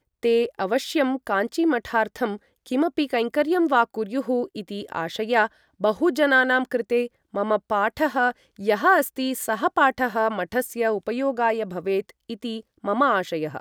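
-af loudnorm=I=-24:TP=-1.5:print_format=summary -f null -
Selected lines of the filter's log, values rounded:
Input Integrated:    -23.5 LUFS
Input True Peak:      -6.2 dBTP
Input LRA:             2.9 LU
Input Threshold:     -33.7 LUFS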